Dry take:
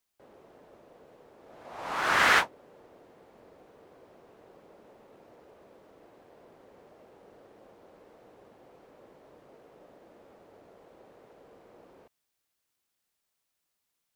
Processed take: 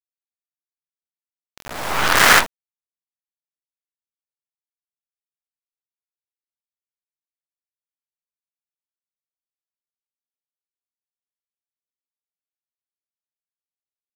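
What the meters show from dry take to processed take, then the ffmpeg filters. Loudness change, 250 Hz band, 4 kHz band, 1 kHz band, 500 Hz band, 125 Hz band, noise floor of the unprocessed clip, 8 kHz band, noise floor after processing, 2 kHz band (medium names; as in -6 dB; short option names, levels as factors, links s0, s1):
+10.5 dB, +10.5 dB, +12.0 dB, +8.0 dB, +9.0 dB, +13.5 dB, -82 dBFS, +17.0 dB, under -85 dBFS, +8.5 dB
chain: -af "acrusher=bits=4:dc=4:mix=0:aa=0.000001,alimiter=level_in=5.96:limit=0.891:release=50:level=0:latency=1,volume=0.891"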